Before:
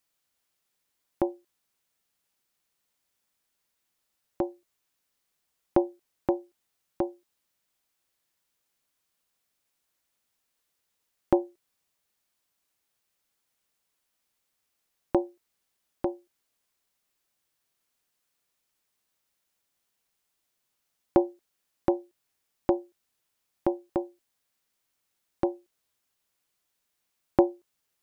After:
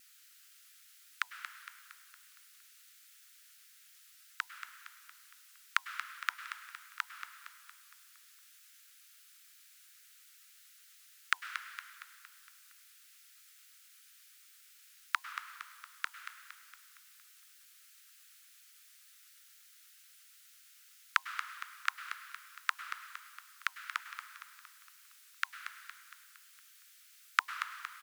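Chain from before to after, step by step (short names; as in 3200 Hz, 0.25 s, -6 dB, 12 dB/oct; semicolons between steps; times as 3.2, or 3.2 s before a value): steep high-pass 1300 Hz 72 dB/oct; vibrato 8.5 Hz 88 cents; on a send: feedback echo 0.231 s, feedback 52%, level -9.5 dB; on the sum: plate-style reverb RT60 1.7 s, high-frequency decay 1×, pre-delay 90 ms, DRR 9.5 dB; gain +18 dB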